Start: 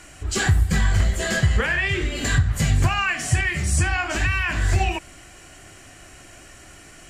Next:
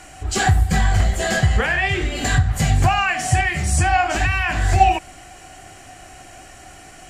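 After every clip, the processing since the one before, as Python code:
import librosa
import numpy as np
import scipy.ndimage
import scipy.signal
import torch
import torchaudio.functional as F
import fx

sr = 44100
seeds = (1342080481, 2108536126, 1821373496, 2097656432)

y = fx.peak_eq(x, sr, hz=750.0, db=13.5, octaves=0.21)
y = F.gain(torch.from_numpy(y), 2.0).numpy()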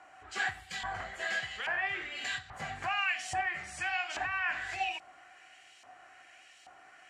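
y = fx.filter_lfo_bandpass(x, sr, shape='saw_up', hz=1.2, low_hz=950.0, high_hz=3700.0, q=1.4)
y = F.gain(torch.from_numpy(y), -7.5).numpy()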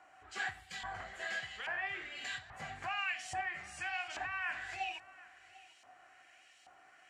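y = x + 10.0 ** (-20.5 / 20.0) * np.pad(x, (int(748 * sr / 1000.0), 0))[:len(x)]
y = F.gain(torch.from_numpy(y), -5.5).numpy()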